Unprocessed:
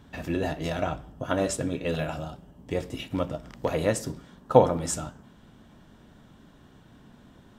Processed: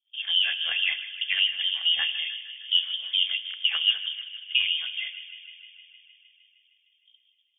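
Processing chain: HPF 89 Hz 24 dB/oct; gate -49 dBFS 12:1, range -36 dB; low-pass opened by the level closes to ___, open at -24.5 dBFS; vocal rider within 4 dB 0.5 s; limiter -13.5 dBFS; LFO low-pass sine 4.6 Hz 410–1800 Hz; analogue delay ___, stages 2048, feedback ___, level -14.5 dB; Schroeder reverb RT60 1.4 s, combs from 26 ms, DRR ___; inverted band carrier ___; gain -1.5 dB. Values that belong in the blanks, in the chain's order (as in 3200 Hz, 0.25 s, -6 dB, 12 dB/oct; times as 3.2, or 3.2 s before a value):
520 Hz, 0.154 s, 75%, 17.5 dB, 3400 Hz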